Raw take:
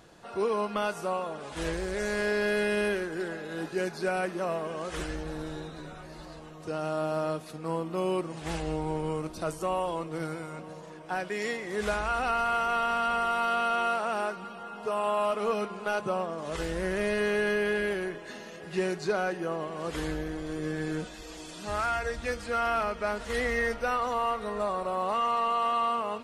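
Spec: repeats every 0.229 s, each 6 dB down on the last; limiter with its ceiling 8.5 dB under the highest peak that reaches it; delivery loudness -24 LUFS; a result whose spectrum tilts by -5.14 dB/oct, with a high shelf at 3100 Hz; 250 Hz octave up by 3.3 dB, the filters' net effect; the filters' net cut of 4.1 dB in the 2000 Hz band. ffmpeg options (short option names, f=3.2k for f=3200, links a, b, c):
-af "equalizer=f=250:t=o:g=5,equalizer=f=2k:t=o:g=-4,highshelf=f=3.1k:g=-5.5,alimiter=level_in=1.5dB:limit=-24dB:level=0:latency=1,volume=-1.5dB,aecho=1:1:229|458|687|916|1145|1374:0.501|0.251|0.125|0.0626|0.0313|0.0157,volume=10dB"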